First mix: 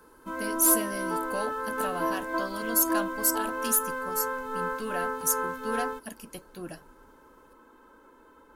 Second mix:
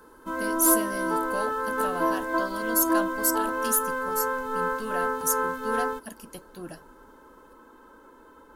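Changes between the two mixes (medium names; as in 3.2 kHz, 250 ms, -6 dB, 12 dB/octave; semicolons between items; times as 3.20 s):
background +4.0 dB; master: add peaking EQ 2.4 kHz -5 dB 0.39 oct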